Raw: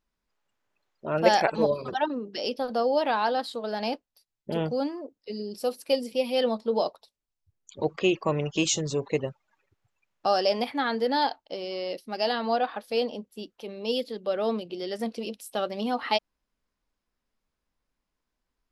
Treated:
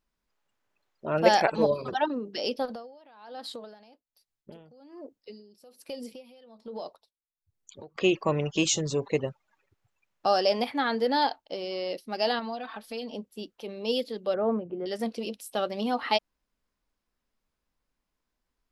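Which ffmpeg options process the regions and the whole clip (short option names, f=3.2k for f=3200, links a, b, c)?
-filter_complex "[0:a]asettb=1/sr,asplit=3[a][b][c];[a]atrim=end=2.654[d];[b]atrim=start=2.65:end=7.96,asetpts=PTS-STARTPTS,afade=t=in:d=0.004:c=qsin,afade=t=out:st=5.306:d=0.004:c=qsin,acompressor=threshold=-33dB:ratio=6:attack=3.2:release=140:knee=1:detection=peak,aeval=exprs='val(0)*pow(10,-19*(0.5-0.5*cos(2*PI*1.2*n/s))/20)':c=same[e];[c]atrim=start=7.956[f];[d][e]acrossfade=d=0.004:c1=hsin:c2=qsin[g];[g][f]acrossfade=d=0.004:c1=qsin:c2=hsin,asettb=1/sr,asplit=3[h][i][j];[h]atrim=end=12.394[k];[i]atrim=start=12.39:end=13.14,asetpts=PTS-STARTPTS,afade=t=in:d=0.004:c=qsin,afade=t=out:st=0.746:d=0.004:c=qsin,equalizer=f=510:t=o:w=0.92:g=-6.5,aecho=1:1:4.5:0.86,atrim=end_sample=33075,acompressor=threshold=-37dB:ratio=2.5:attack=3.2:release=140:knee=1:detection=peak[l];[j]atrim=start=13.136[m];[k][l]acrossfade=d=0.004:c1=hsin:c2=qsin[n];[n][m]acrossfade=d=0.004:c1=qsin:c2=hsin,asettb=1/sr,asplit=3[o][p][q];[o]atrim=end=14.344[r];[p]atrim=start=14.34:end=14.86,asetpts=PTS-STARTPTS,afade=t=in:d=0.004:c=qsin,afade=t=out:st=0.516:d=0.004:c=qsin,lowpass=f=1.6k:w=0.5412,lowpass=f=1.6k:w=1.3066,equalizer=f=91:w=0.8:g=6.5[s];[q]atrim=start=14.856[t];[r][s]acrossfade=d=0.004:c1=hsin:c2=qsin[u];[u][t]acrossfade=d=0.004:c1=qsin:c2=hsin"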